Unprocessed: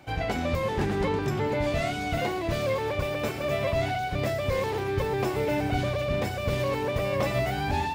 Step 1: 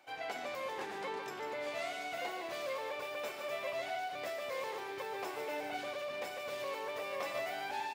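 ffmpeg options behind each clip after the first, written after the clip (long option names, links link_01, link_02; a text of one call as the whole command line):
ffmpeg -i in.wav -af "highpass=560,aecho=1:1:147:0.422,volume=-9dB" out.wav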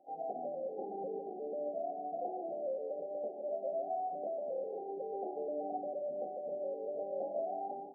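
ffmpeg -i in.wav -af "afftfilt=real='re*between(b*sr/4096,160,820)':imag='im*between(b*sr/4096,160,820)':win_size=4096:overlap=0.75,volume=3dB" out.wav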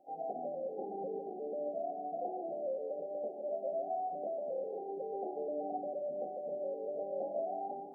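ffmpeg -i in.wav -af "lowshelf=frequency=110:gain=8,areverse,acompressor=mode=upward:threshold=-49dB:ratio=2.5,areverse" out.wav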